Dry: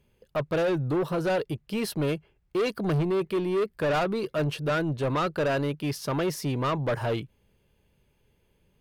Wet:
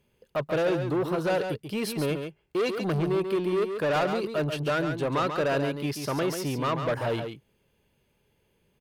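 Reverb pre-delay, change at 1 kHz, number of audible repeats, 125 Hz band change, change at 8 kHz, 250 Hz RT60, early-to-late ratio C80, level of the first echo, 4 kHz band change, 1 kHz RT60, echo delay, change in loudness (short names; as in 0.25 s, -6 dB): none, +0.5 dB, 1, -2.0 dB, +1.0 dB, none, none, -7.0 dB, +1.0 dB, none, 0.138 s, 0.0 dB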